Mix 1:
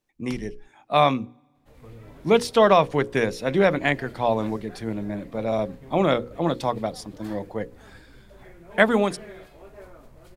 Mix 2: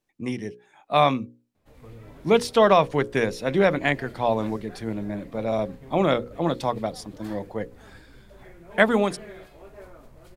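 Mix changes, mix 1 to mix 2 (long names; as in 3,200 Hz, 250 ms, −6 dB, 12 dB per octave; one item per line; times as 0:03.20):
first sound: muted
reverb: off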